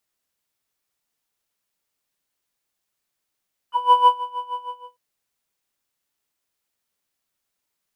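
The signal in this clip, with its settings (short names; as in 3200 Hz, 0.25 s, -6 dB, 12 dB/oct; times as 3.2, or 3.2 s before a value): synth patch with tremolo B5, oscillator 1 triangle, oscillator 2 square, interval +19 st, sub -21 dB, noise -24.5 dB, filter bandpass, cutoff 520 Hz, Q 3.2, filter envelope 2 oct, filter decay 0.05 s, filter sustain 20%, attack 0.286 s, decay 0.18 s, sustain -18 dB, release 0.36 s, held 0.89 s, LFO 6.4 Hz, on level 16.5 dB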